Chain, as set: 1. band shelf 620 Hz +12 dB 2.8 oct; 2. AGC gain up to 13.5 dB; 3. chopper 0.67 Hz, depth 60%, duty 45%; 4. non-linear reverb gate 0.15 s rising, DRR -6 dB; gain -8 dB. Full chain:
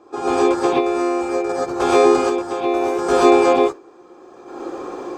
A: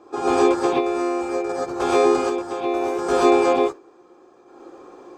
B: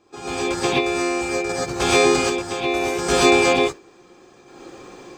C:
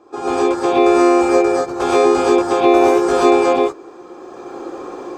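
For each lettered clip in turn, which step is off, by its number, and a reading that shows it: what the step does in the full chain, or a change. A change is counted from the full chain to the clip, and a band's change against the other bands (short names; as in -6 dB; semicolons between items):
2, momentary loudness spread change -7 LU; 1, 500 Hz band -11.0 dB; 3, momentary loudness spread change +2 LU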